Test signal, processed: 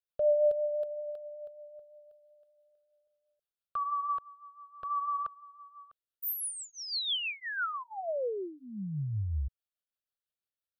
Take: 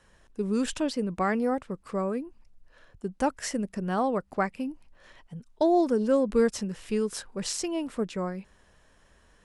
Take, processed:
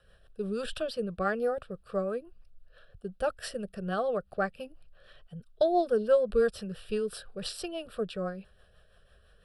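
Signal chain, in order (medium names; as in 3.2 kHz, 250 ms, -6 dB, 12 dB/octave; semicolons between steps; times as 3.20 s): rotary cabinet horn 6 Hz; static phaser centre 1.4 kHz, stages 8; trim +3 dB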